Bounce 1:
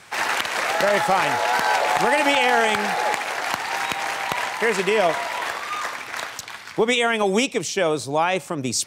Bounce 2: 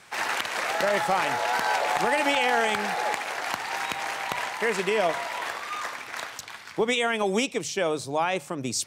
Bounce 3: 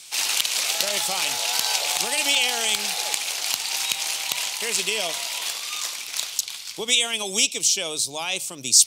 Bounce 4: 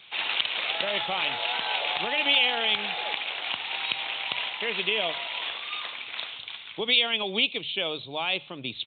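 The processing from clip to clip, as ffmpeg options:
-af "bandreject=f=50:t=h:w=6,bandreject=f=100:t=h:w=6,bandreject=f=150:t=h:w=6,volume=0.562"
-af "aexciter=amount=8.7:drive=6.5:freq=2600,volume=0.422"
-af "aresample=8000,aresample=44100"

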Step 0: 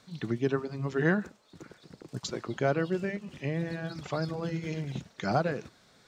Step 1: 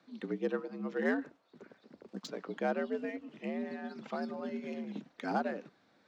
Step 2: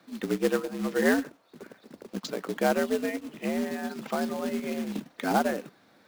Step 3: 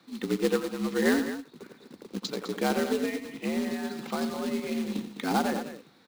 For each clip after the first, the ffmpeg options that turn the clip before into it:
-af "adynamicsmooth=sensitivity=4:basefreq=3500,afreqshift=71,volume=0.531"
-af "acrusher=bits=3:mode=log:mix=0:aa=0.000001,volume=2.51"
-filter_complex "[0:a]equalizer=f=630:t=o:w=0.33:g=-9,equalizer=f=1600:t=o:w=0.33:g=-4,equalizer=f=4000:t=o:w=0.33:g=5,equalizer=f=16000:t=o:w=0.33:g=-5,asplit=2[s0][s1];[s1]aecho=0:1:87.46|207:0.316|0.282[s2];[s0][s2]amix=inputs=2:normalize=0"

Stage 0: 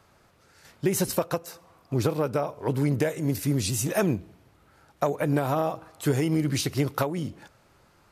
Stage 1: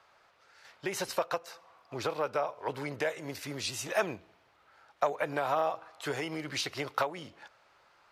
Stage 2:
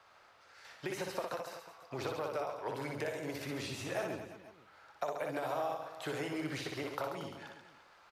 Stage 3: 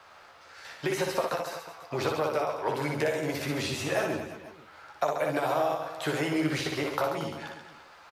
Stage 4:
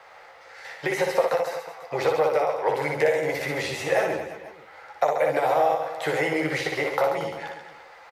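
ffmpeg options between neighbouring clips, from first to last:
-filter_complex "[0:a]acrossover=split=530 5400:gain=0.112 1 0.178[s0][s1][s2];[s0][s1][s2]amix=inputs=3:normalize=0"
-filter_complex "[0:a]acrossover=split=780|3500|7900[s0][s1][s2][s3];[s0]acompressor=threshold=0.0126:ratio=4[s4];[s1]acompressor=threshold=0.00501:ratio=4[s5];[s2]acompressor=threshold=0.00112:ratio=4[s6];[s3]acompressor=threshold=0.00112:ratio=4[s7];[s4][s5][s6][s7]amix=inputs=4:normalize=0,asplit=2[s8][s9];[s9]aecho=0:1:60|135|228.8|345.9|492.4:0.631|0.398|0.251|0.158|0.1[s10];[s8][s10]amix=inputs=2:normalize=0"
-filter_complex "[0:a]asplit=2[s0][s1];[s1]adelay=13,volume=0.473[s2];[s0][s2]amix=inputs=2:normalize=0,volume=2.66"
-af "equalizer=f=100:t=o:w=0.33:g=-9,equalizer=f=250:t=o:w=0.33:g=-9,equalizer=f=500:t=o:w=0.33:g=12,equalizer=f=800:t=o:w=0.33:g=9,equalizer=f=2000:t=o:w=0.33:g=11"

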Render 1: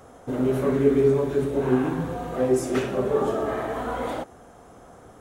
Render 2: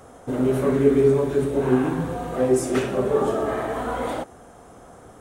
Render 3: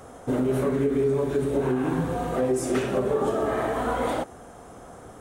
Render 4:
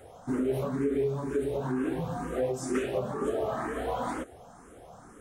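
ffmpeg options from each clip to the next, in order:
-af "equalizer=f=8800:t=o:w=0.31:g=5.5,volume=1.26"
-af "alimiter=limit=0.141:level=0:latency=1:release=208,volume=1.19"
-filter_complex "[0:a]asplit=2[s0][s1];[s1]afreqshift=2.1[s2];[s0][s2]amix=inputs=2:normalize=1,volume=0.708"

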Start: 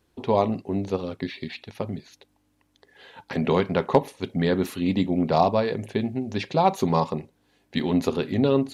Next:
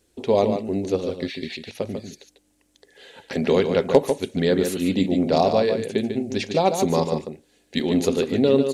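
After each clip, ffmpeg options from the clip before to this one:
-filter_complex "[0:a]equalizer=f=125:t=o:w=1:g=-7,equalizer=f=500:t=o:w=1:g=4,equalizer=f=1000:t=o:w=1:g=-9,equalizer=f=8000:t=o:w=1:g=10,asplit=2[s0][s1];[s1]adelay=145.8,volume=0.447,highshelf=f=4000:g=-3.28[s2];[s0][s2]amix=inputs=2:normalize=0,volume=1.33"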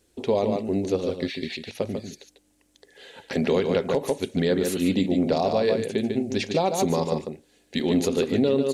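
-af "alimiter=limit=0.237:level=0:latency=1:release=101"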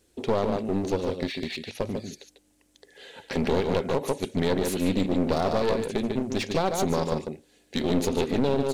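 -af "aeval=exprs='clip(val(0),-1,0.0355)':c=same"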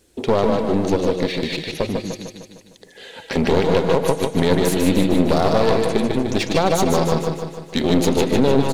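-af "aecho=1:1:152|304|456|608|760|912|1064:0.501|0.271|0.146|0.0789|0.0426|0.023|0.0124,volume=2.24"

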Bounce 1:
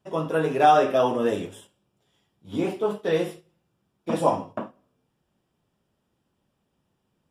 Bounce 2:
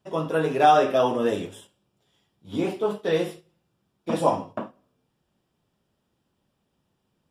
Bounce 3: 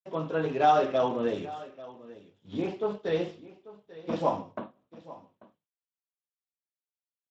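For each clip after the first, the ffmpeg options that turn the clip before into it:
-af "equalizer=f=4200:w=1.8:g=3"
-af "aecho=1:1:840:0.119,agate=range=0.0224:threshold=0.002:ratio=3:detection=peak,volume=0.531" -ar 16000 -c:a libspeex -b:a 21k

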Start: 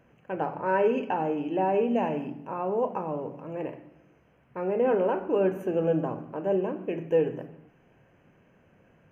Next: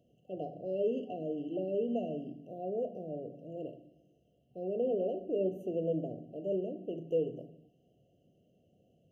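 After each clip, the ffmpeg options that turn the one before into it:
-af "highpass=60,afftfilt=real='re*(1-between(b*sr/4096,750,2700))':imag='im*(1-between(b*sr/4096,750,2700))':win_size=4096:overlap=0.75,adynamicequalizer=threshold=0.00355:dfrequency=2800:dqfactor=0.7:tfrequency=2800:tqfactor=0.7:attack=5:release=100:ratio=0.375:range=2.5:mode=cutabove:tftype=highshelf,volume=0.422"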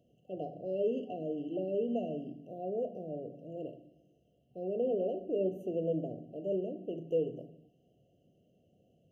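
-af anull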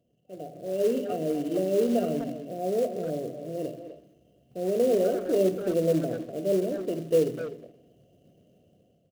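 -filter_complex "[0:a]dynaudnorm=f=290:g=5:m=3.76,acrusher=bits=5:mode=log:mix=0:aa=0.000001,asplit=2[s0][s1];[s1]adelay=250,highpass=300,lowpass=3400,asoftclip=type=hard:threshold=0.106,volume=0.355[s2];[s0][s2]amix=inputs=2:normalize=0,volume=0.708"

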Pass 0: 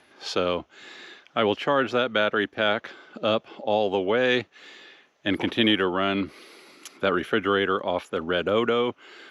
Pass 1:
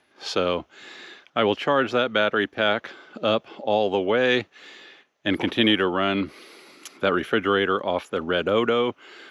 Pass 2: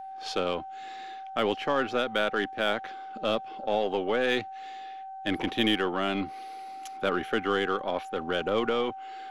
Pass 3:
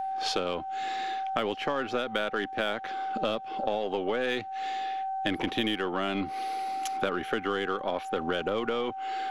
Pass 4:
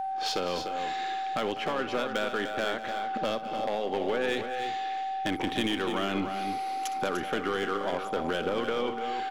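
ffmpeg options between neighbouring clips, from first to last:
-af "agate=range=0.398:threshold=0.00224:ratio=16:detection=peak,volume=1.19"
-af "aeval=exprs='val(0)+0.0251*sin(2*PI*770*n/s)':c=same,aeval=exprs='0.447*(cos(1*acos(clip(val(0)/0.447,-1,1)))-cos(1*PI/2))+0.0141*(cos(8*acos(clip(val(0)/0.447,-1,1)))-cos(8*PI/2))':c=same,volume=0.501"
-af "acompressor=threshold=0.0178:ratio=6,volume=2.66"
-filter_complex "[0:a]asoftclip=type=hard:threshold=0.0708,asplit=2[s0][s1];[s1]aecho=0:1:62|199|297|327:0.178|0.188|0.398|0.141[s2];[s0][s2]amix=inputs=2:normalize=0"

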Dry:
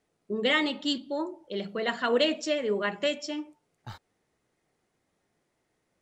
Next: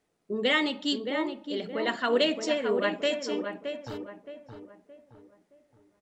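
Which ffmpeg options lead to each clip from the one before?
-filter_complex "[0:a]bandreject=f=50:t=h:w=6,bandreject=f=100:t=h:w=6,bandreject=f=150:t=h:w=6,bandreject=f=200:t=h:w=6,asplit=2[s0][s1];[s1]adelay=620,lowpass=f=1600:p=1,volume=0.501,asplit=2[s2][s3];[s3]adelay=620,lowpass=f=1600:p=1,volume=0.4,asplit=2[s4][s5];[s5]adelay=620,lowpass=f=1600:p=1,volume=0.4,asplit=2[s6][s7];[s7]adelay=620,lowpass=f=1600:p=1,volume=0.4,asplit=2[s8][s9];[s9]adelay=620,lowpass=f=1600:p=1,volume=0.4[s10];[s0][s2][s4][s6][s8][s10]amix=inputs=6:normalize=0"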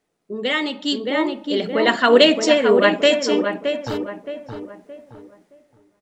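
-af "equalizer=f=71:w=1.5:g=-5,dynaudnorm=f=300:g=7:m=3.76,volume=1.26"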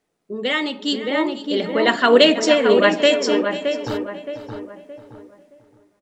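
-af "aecho=1:1:490:0.178"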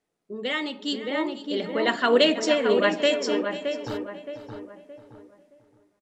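-af "aresample=32000,aresample=44100,volume=0.473"

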